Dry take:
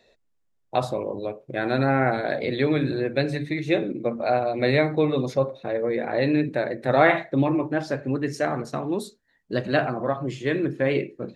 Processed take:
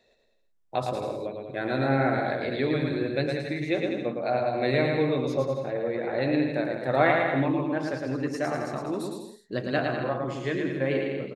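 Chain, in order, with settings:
bouncing-ball delay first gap 110 ms, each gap 0.8×, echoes 5
level −5 dB

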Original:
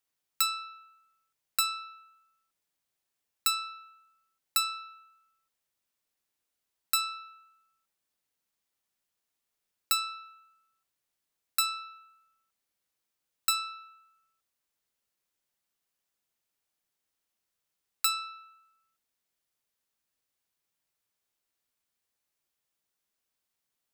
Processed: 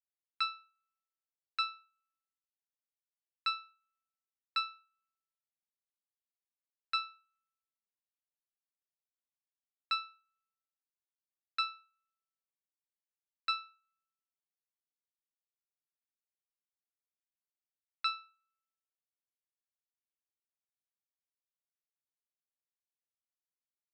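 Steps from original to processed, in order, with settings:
inverse Chebyshev low-pass filter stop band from 9,000 Hz, stop band 50 dB
expander for the loud parts 2.5 to 1, over −49 dBFS

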